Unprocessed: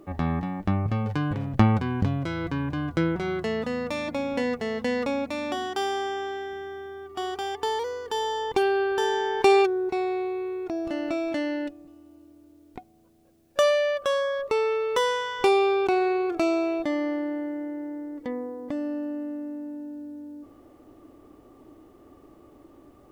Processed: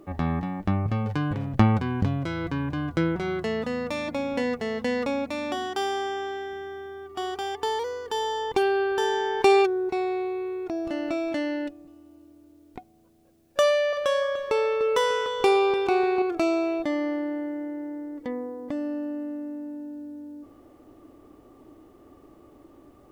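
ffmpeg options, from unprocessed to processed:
ffmpeg -i in.wav -filter_complex "[0:a]asettb=1/sr,asplit=3[link_01][link_02][link_03];[link_01]atrim=end=13.634[link_04];[link_02]atrim=start=13.63:end=16.22,asetpts=PTS-STARTPTS,afade=type=in:duration=0.004:curve=qsin,afade=type=out:start_time=2.586:duration=0.004:curve=qsin,asplit=2[link_05][link_06];[link_06]adelay=297,lowpass=frequency=2000:poles=1,volume=-7.5dB,asplit=2[link_07][link_08];[link_08]adelay=297,lowpass=frequency=2000:poles=1,volume=0.45,asplit=2[link_09][link_10];[link_10]adelay=297,lowpass=frequency=2000:poles=1,volume=0.45,asplit=2[link_11][link_12];[link_12]adelay=297,lowpass=frequency=2000:poles=1,volume=0.45,asplit=2[link_13][link_14];[link_14]adelay=297,lowpass=frequency=2000:poles=1,volume=0.45[link_15];[link_05][link_07][link_09][link_11][link_13][link_15]amix=inputs=6:normalize=0,atrim=end_sample=114219[link_16];[link_03]atrim=start=16.216[link_17];[link_04][link_16]acrossfade=duration=0.004:curve1=hsin:curve2=qsin[link_18];[link_18][link_17]acrossfade=duration=0.004:curve1=qsin:curve2=hsin" out.wav

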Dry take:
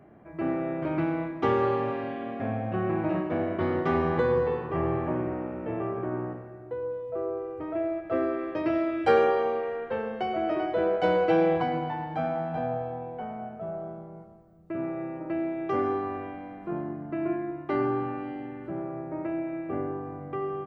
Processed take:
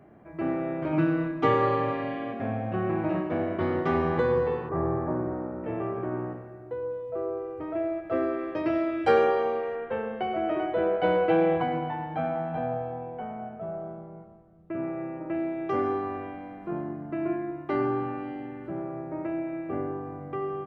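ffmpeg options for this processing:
ffmpeg -i in.wav -filter_complex "[0:a]asettb=1/sr,asplit=3[link_01][link_02][link_03];[link_01]atrim=end=0.924[link_04];[link_02]atrim=start=0.92:end=2.33,asetpts=PTS-STARTPTS,afade=type=in:duration=0.004:curve=qsin,afade=type=out:start_time=1.406:duration=0.004:curve=qsin,aecho=1:1:6.7:0.82,atrim=end_sample=62181[link_05];[link_03]atrim=start=2.326[link_06];[link_04][link_05]acrossfade=duration=0.004:curve1=hsin:curve2=qsin[link_07];[link_07][link_06]acrossfade=duration=0.004:curve1=qsin:curve2=hsin,asettb=1/sr,asplit=3[link_08][link_09][link_10];[link_08]atrim=end=4.694[link_11];[link_09]atrim=start=4.69:end=5.64,asetpts=PTS-STARTPTS,afade=type=in:duration=0.004:curve=qsin,afade=type=out:start_time=0.946:duration=0.004:curve=qsin,lowpass=frequency=1600:width=0.5412,lowpass=frequency=1600:width=1.3066[link_12];[link_10]atrim=start=5.636[link_13];[link_11][link_12]acrossfade=duration=0.004:curve1=hsin:curve2=qsin[link_14];[link_14][link_13]acrossfade=duration=0.004:curve1=qsin:curve2=hsin,asettb=1/sr,asplit=3[link_15][link_16][link_17];[link_15]atrim=end=9.754[link_18];[link_16]atrim=start=9.75:end=15.35,asetpts=PTS-STARTPTS,afade=type=in:duration=0.004:curve=qsin,afade=type=out:start_time=5.596:duration=0.004:curve=qsin,lowpass=frequency=3500:width=0.5412,lowpass=frequency=3500:width=1.3066[link_19];[link_17]atrim=start=15.346[link_20];[link_18][link_19]acrossfade=duration=0.004:curve1=hsin:curve2=qsin[link_21];[link_21][link_20]acrossfade=duration=0.004:curve1=qsin:curve2=hsin" out.wav

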